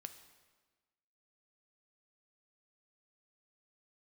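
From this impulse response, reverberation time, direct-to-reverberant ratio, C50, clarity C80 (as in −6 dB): 1.3 s, 8.0 dB, 11.0 dB, 12.5 dB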